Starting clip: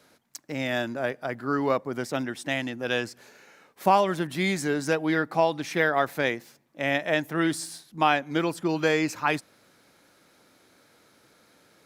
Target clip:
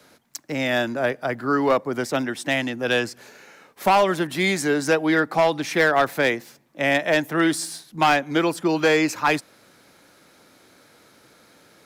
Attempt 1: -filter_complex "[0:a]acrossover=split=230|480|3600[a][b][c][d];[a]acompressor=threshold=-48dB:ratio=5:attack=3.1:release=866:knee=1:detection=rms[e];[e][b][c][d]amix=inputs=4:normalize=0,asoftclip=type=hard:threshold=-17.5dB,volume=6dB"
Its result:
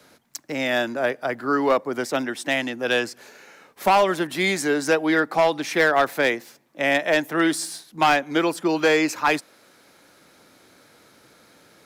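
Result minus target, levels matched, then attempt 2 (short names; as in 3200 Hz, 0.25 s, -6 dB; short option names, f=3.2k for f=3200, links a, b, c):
compressor: peak gain reduction +9 dB
-filter_complex "[0:a]acrossover=split=230|480|3600[a][b][c][d];[a]acompressor=threshold=-37dB:ratio=5:attack=3.1:release=866:knee=1:detection=rms[e];[e][b][c][d]amix=inputs=4:normalize=0,asoftclip=type=hard:threshold=-17.5dB,volume=6dB"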